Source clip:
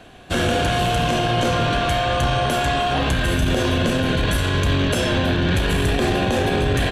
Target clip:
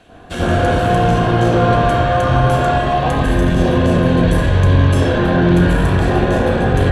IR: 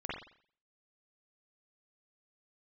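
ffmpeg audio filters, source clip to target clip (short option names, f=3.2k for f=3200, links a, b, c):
-filter_complex "[0:a]asettb=1/sr,asplit=3[a][b][c];[a]atrim=end=2.624[d];[b]atrim=start=2.62:end=4.96,asetpts=PTS-STARTPTS,afade=t=in:d=0.004:c=qsin,afade=t=out:st=2.336:d=0.004:c=qsin,bandreject=f=1.4k:w=7.2[e];[c]atrim=start=4.956[f];[d][e]acrossfade=d=0.004:c1=hsin:c2=qsin[g];[g][f]acrossfade=d=0.004:c1=qsin:c2=hsin[h];[1:a]atrim=start_sample=2205,asetrate=22491,aresample=44100[i];[h][i]afir=irnorm=-1:irlink=0,volume=-2.5dB"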